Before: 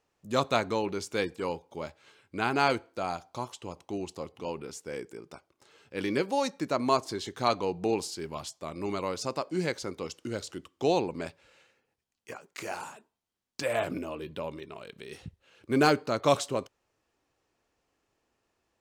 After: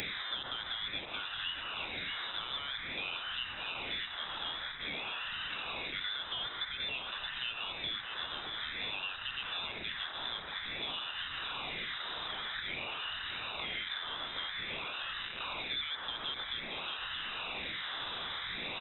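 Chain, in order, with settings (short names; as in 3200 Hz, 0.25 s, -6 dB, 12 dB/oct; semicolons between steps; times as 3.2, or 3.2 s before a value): delta modulation 32 kbps, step -31.5 dBFS; HPF 170 Hz 12 dB/oct; low shelf 450 Hz -5.5 dB; limiter -24 dBFS, peak gain reduction 10.5 dB; requantised 6-bit, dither none; phaser stages 8, 0.51 Hz, lowest notch 440–1300 Hz; on a send: echo 0.624 s -9.5 dB; on the sum: inverted band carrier 3800 Hz; three-band squash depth 100%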